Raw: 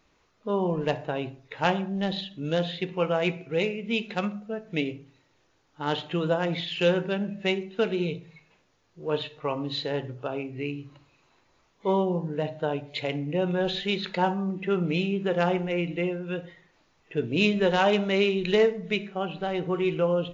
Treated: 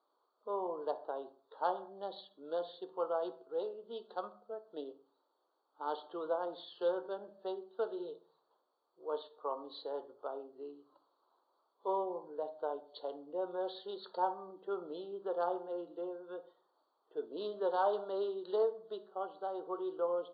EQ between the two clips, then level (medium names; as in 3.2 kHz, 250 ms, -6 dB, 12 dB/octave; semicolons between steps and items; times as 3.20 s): high-pass 370 Hz 24 dB/octave; Butterworth band-stop 2.3 kHz, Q 0.58; rippled Chebyshev low-pass 4.6 kHz, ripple 9 dB; -1.5 dB